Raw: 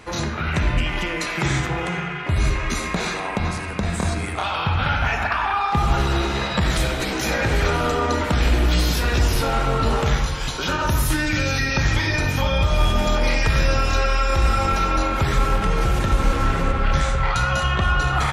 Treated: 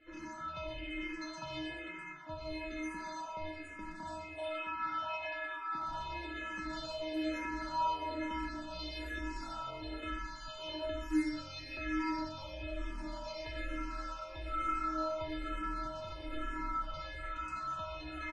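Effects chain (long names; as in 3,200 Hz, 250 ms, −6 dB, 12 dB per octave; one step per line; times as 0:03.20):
0:04.48–0:05.88: high-pass filter 200 Hz 6 dB per octave
hard clipping −14 dBFS, distortion −18 dB
high-frequency loss of the air 100 metres
stiff-string resonator 310 Hz, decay 0.61 s, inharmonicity 0.008
multiband delay without the direct sound lows, highs 120 ms, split 5,900 Hz
frequency shifter mixed with the dry sound −1.1 Hz
level +5.5 dB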